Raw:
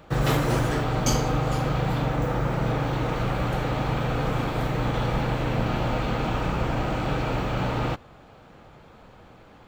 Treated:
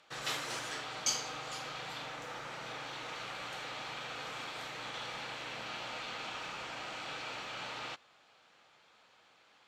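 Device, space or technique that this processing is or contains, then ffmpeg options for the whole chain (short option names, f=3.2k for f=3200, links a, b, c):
piezo pickup straight into a mixer: -af "lowpass=5.2k,aderivative,volume=3.5dB"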